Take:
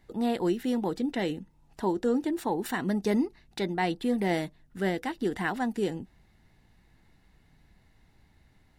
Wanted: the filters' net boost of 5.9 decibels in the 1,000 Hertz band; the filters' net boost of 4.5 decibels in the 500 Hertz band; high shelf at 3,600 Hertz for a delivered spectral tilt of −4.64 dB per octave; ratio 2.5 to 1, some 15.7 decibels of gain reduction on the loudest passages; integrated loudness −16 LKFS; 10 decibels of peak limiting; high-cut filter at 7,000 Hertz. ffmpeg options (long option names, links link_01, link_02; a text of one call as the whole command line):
ffmpeg -i in.wav -af "lowpass=7000,equalizer=frequency=500:width_type=o:gain=4.5,equalizer=frequency=1000:width_type=o:gain=5.5,highshelf=frequency=3600:gain=7,acompressor=threshold=-44dB:ratio=2.5,volume=27.5dB,alimiter=limit=-6dB:level=0:latency=1" out.wav